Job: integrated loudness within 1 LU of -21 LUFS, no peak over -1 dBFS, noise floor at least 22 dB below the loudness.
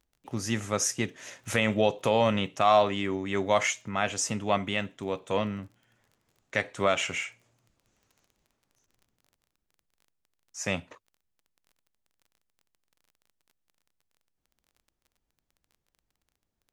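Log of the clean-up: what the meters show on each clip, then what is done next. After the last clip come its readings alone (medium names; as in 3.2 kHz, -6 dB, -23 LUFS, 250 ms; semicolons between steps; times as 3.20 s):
tick rate 22 per s; loudness -28.0 LUFS; peak level -9.5 dBFS; loudness target -21.0 LUFS
-> de-click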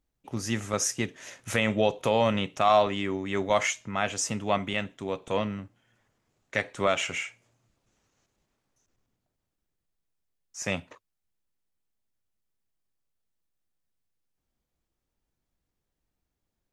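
tick rate 0.060 per s; loudness -28.0 LUFS; peak level -9.5 dBFS; loudness target -21.0 LUFS
-> trim +7 dB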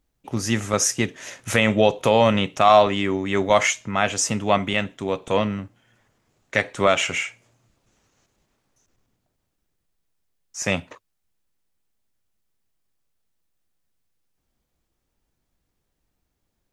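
loudness -21.0 LUFS; peak level -2.5 dBFS; noise floor -76 dBFS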